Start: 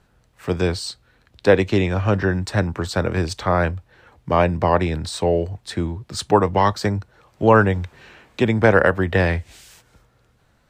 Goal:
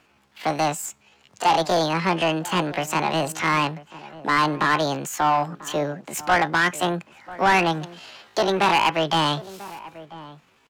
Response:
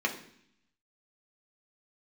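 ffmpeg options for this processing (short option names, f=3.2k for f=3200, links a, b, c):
-filter_complex "[0:a]asetrate=76340,aresample=44100,atempo=0.577676,asplit=2[a][b];[b]highpass=f=720:p=1,volume=20dB,asoftclip=type=tanh:threshold=-1.5dB[c];[a][c]amix=inputs=2:normalize=0,lowpass=f=3.9k:p=1,volume=-6dB,asplit=2[d][e];[e]adelay=991.3,volume=-17dB,highshelf=f=4k:g=-22.3[f];[d][f]amix=inputs=2:normalize=0,volume=-8.5dB"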